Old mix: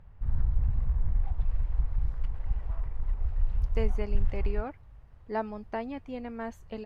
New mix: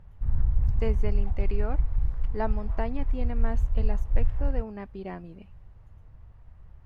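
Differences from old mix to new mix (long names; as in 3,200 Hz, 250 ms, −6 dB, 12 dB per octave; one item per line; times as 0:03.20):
speech: entry −2.95 s
master: add low-shelf EQ 420 Hz +3 dB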